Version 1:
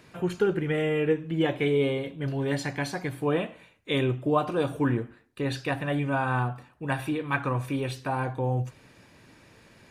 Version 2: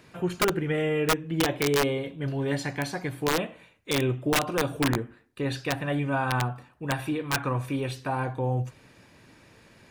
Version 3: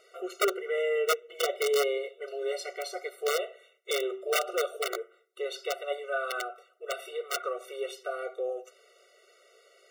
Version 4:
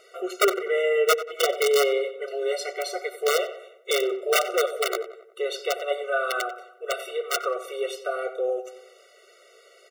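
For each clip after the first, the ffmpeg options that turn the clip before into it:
ffmpeg -i in.wav -af "aeval=exprs='(mod(6.68*val(0)+1,2)-1)/6.68':channel_layout=same" out.wav
ffmpeg -i in.wav -af "bandreject=frequency=128.3:width_type=h:width=4,bandreject=frequency=256.6:width_type=h:width=4,bandreject=frequency=384.9:width_type=h:width=4,afftfilt=real='re*eq(mod(floor(b*sr/1024/380),2),1)':imag='im*eq(mod(floor(b*sr/1024/380),2),1)':win_size=1024:overlap=0.75" out.wav
ffmpeg -i in.wav -filter_complex "[0:a]asplit=2[link_01][link_02];[link_02]adelay=92,lowpass=frequency=2500:poles=1,volume=-12.5dB,asplit=2[link_03][link_04];[link_04]adelay=92,lowpass=frequency=2500:poles=1,volume=0.51,asplit=2[link_05][link_06];[link_06]adelay=92,lowpass=frequency=2500:poles=1,volume=0.51,asplit=2[link_07][link_08];[link_08]adelay=92,lowpass=frequency=2500:poles=1,volume=0.51,asplit=2[link_09][link_10];[link_10]adelay=92,lowpass=frequency=2500:poles=1,volume=0.51[link_11];[link_01][link_03][link_05][link_07][link_09][link_11]amix=inputs=6:normalize=0,volume=6dB" out.wav

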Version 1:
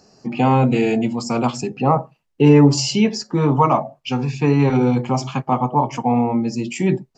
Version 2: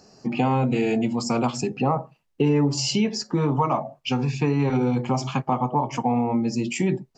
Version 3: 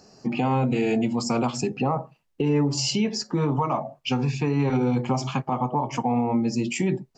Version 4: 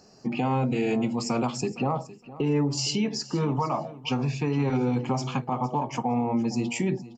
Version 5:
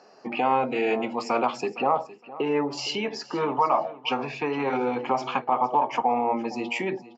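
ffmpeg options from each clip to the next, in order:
ffmpeg -i in.wav -af "acompressor=threshold=-20dB:ratio=3" out.wav
ffmpeg -i in.wav -af "alimiter=limit=-14.5dB:level=0:latency=1:release=101" out.wav
ffmpeg -i in.wav -af "aecho=1:1:462|924:0.133|0.0253,volume=-2.5dB" out.wav
ffmpeg -i in.wav -af "highpass=510,lowpass=2700,volume=7.5dB" out.wav

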